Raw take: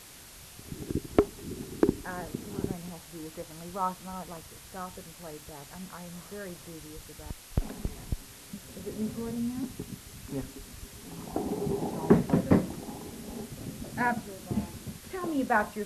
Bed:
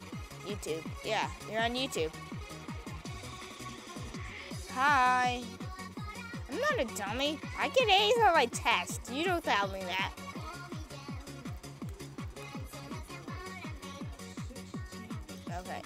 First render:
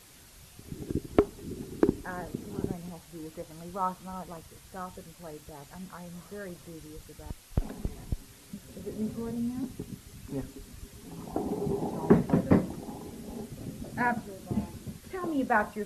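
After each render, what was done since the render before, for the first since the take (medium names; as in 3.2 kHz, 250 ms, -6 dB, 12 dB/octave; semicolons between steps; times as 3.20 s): noise reduction 6 dB, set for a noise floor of -49 dBFS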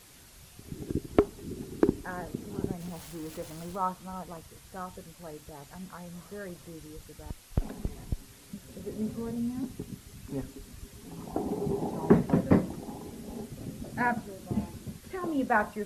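2.80–3.76 s: jump at every zero crossing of -44 dBFS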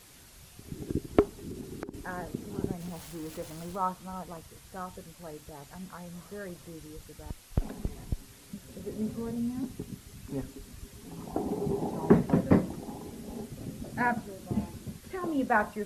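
1.38–1.94 s: compression 10:1, threshold -34 dBFS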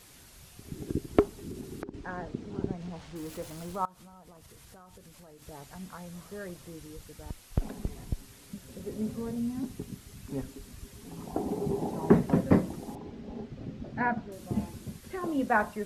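1.82–3.16 s: distance through air 120 m; 3.85–5.42 s: compression 8:1, threshold -48 dBFS; 12.95–14.32 s: distance through air 200 m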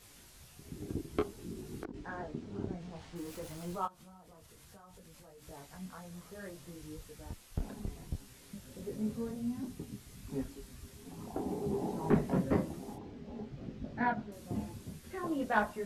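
saturation -17 dBFS, distortion -12 dB; detune thickener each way 20 cents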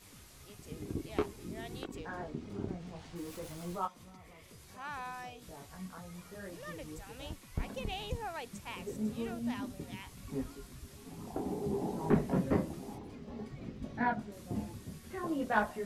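add bed -16.5 dB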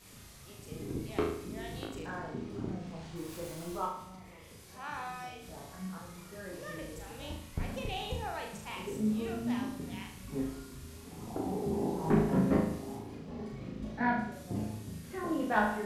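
flutter echo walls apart 6.4 m, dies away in 0.63 s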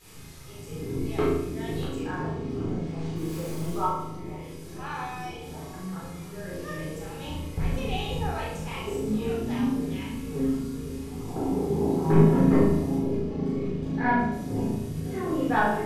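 bucket-brigade echo 505 ms, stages 2048, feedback 76%, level -11 dB; simulated room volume 670 m³, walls furnished, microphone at 4 m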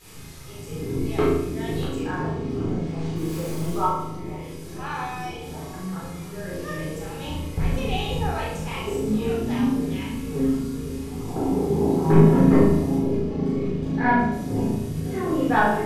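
trim +4 dB; peak limiter -3 dBFS, peak gain reduction 1.5 dB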